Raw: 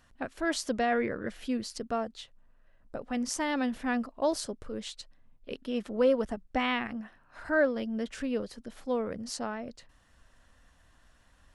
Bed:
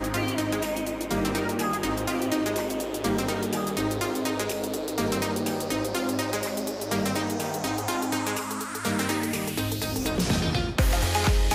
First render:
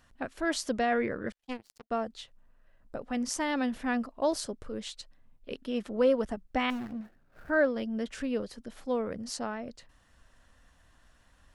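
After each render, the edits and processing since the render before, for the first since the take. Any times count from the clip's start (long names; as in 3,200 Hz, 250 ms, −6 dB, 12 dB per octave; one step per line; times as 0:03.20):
0:01.32–0:01.91: power curve on the samples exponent 3
0:06.70–0:07.50: running median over 41 samples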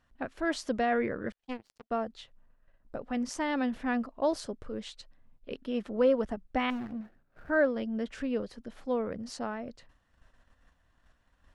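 noise gate −59 dBFS, range −7 dB
low-pass filter 3,200 Hz 6 dB per octave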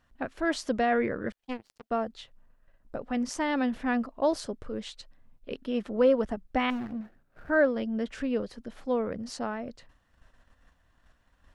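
level +2.5 dB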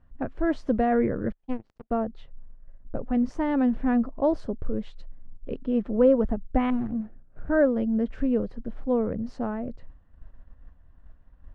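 low-pass filter 1,800 Hz 6 dB per octave
spectral tilt −3 dB per octave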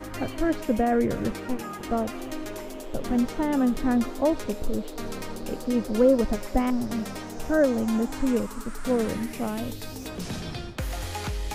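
mix in bed −9 dB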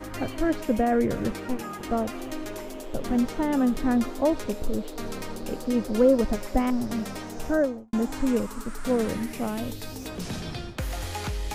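0:07.46–0:07.93: fade out and dull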